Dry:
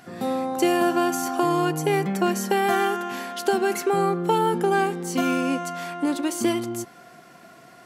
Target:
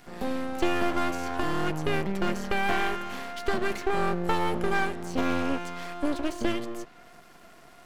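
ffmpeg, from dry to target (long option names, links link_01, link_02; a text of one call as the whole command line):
ffmpeg -i in.wav -filter_complex "[0:a]acrossover=split=140|1500|4800[link_01][link_02][link_03][link_04];[link_04]acompressor=threshold=-51dB:ratio=6[link_05];[link_01][link_02][link_03][link_05]amix=inputs=4:normalize=0,aeval=exprs='max(val(0),0)':channel_layout=same" out.wav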